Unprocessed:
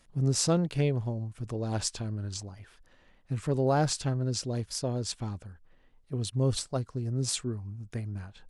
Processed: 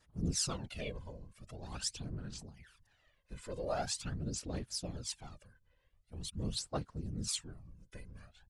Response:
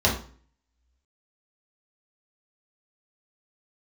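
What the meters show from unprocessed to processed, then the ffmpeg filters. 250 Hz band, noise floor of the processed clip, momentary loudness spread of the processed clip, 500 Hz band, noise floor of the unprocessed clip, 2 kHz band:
-11.0 dB, -73 dBFS, 18 LU, -11.5 dB, -63 dBFS, -6.5 dB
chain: -af "afftfilt=real='hypot(re,im)*cos(2*PI*random(0))':imag='hypot(re,im)*sin(2*PI*random(1))':win_size=512:overlap=0.75,adynamicequalizer=threshold=0.00126:dfrequency=2700:dqfactor=2:tfrequency=2700:tqfactor=2:attack=5:release=100:ratio=0.375:range=1.5:mode=boostabove:tftype=bell,aphaser=in_gain=1:out_gain=1:delay=2:decay=0.62:speed=0.44:type=sinusoidal,tiltshelf=f=970:g=-4.5,aresample=32000,aresample=44100,volume=0.501"

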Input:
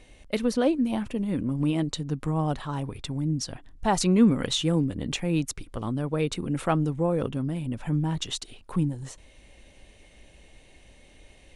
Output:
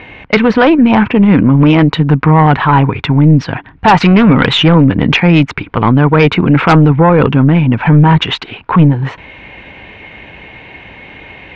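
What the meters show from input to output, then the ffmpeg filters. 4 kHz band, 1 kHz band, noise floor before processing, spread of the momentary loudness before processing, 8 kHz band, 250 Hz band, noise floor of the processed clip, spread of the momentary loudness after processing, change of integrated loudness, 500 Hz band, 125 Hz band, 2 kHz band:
+16.0 dB, +21.5 dB, -54 dBFS, 10 LU, no reading, +17.5 dB, -36 dBFS, 7 LU, +18.0 dB, +16.5 dB, +20.0 dB, +24.5 dB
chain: -af "highpass=110,equalizer=f=240:t=q:w=4:g=-4,equalizer=f=350:t=q:w=4:g=-3,equalizer=f=570:t=q:w=4:g=-7,equalizer=f=940:t=q:w=4:g=6,equalizer=f=1500:t=q:w=4:g=5,equalizer=f=2300:t=q:w=4:g=5,lowpass=f=2800:w=0.5412,lowpass=f=2800:w=1.3066,aeval=exprs='0.355*(cos(1*acos(clip(val(0)/0.355,-1,1)))-cos(1*PI/2))+0.0891*(cos(4*acos(clip(val(0)/0.355,-1,1)))-cos(4*PI/2))+0.02*(cos(6*acos(clip(val(0)/0.355,-1,1)))-cos(6*PI/2))':c=same,apsyclip=18.8,volume=0.841"

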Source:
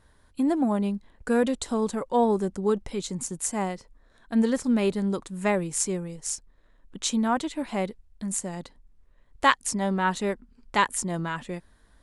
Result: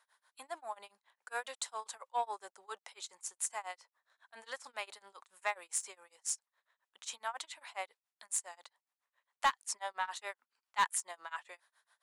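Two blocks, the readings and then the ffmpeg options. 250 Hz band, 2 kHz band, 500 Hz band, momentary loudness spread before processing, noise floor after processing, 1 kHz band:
under -40 dB, -9.5 dB, -20.5 dB, 11 LU, under -85 dBFS, -9.5 dB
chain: -filter_complex "[0:a]highpass=f=780:w=0.5412,highpass=f=780:w=1.3066,asplit=2[s0][s1];[s1]aeval=exprs='0.15*(abs(mod(val(0)/0.15+3,4)-2)-1)':c=same,volume=0.376[s2];[s0][s2]amix=inputs=2:normalize=0,tremolo=f=7.3:d=0.97,asoftclip=type=tanh:threshold=0.178,volume=0.531"

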